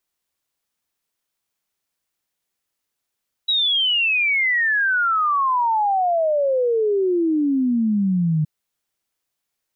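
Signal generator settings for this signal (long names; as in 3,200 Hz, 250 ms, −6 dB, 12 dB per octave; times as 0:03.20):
exponential sine sweep 3,900 Hz → 150 Hz 4.97 s −16 dBFS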